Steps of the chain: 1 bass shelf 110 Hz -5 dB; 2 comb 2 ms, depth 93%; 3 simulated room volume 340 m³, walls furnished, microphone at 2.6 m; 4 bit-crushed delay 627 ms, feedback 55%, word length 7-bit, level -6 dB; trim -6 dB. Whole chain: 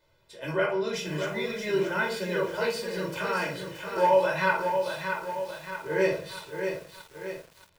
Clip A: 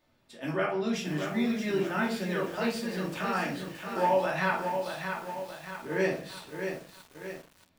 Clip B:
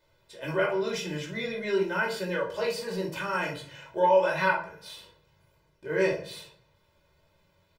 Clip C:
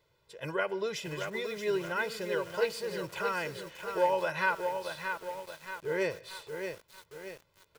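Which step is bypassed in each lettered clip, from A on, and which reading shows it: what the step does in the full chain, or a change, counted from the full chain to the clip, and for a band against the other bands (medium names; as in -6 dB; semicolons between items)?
2, 250 Hz band +6.5 dB; 4, momentary loudness spread change +5 LU; 3, loudness change -5.0 LU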